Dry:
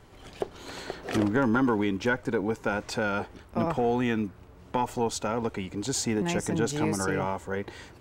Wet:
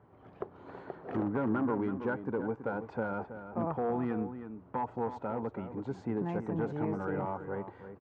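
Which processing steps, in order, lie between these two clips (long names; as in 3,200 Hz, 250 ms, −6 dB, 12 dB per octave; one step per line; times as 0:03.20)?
wavefolder on the positive side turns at −19 dBFS
Chebyshev band-pass filter 110–1,100 Hz, order 2
slap from a distant wall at 56 metres, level −10 dB
level −5 dB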